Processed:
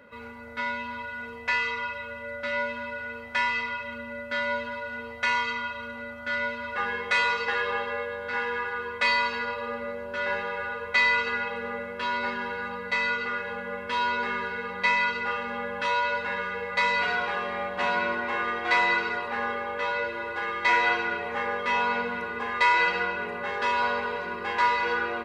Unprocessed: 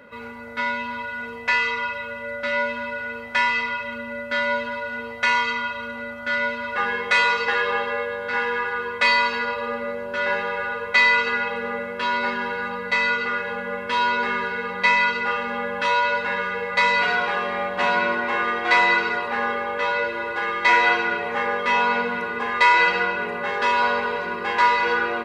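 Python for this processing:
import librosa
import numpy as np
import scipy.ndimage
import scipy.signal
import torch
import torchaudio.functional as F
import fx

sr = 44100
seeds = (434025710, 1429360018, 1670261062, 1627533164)

y = fx.peak_eq(x, sr, hz=75.0, db=11.5, octaves=0.25)
y = y * 10.0 ** (-5.5 / 20.0)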